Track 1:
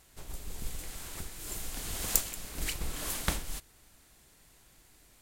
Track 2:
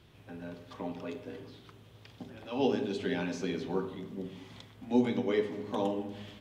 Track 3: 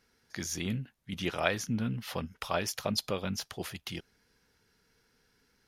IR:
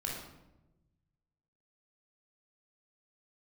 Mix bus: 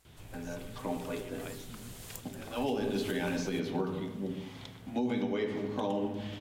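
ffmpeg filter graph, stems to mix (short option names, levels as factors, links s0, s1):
-filter_complex "[0:a]acompressor=threshold=0.00794:ratio=2,volume=0.422[s0];[1:a]adelay=50,volume=1.26,asplit=2[s1][s2];[s2]volume=0.266[s3];[2:a]volume=0.112[s4];[3:a]atrim=start_sample=2205[s5];[s3][s5]afir=irnorm=-1:irlink=0[s6];[s0][s1][s4][s6]amix=inputs=4:normalize=0,alimiter=limit=0.0708:level=0:latency=1:release=106"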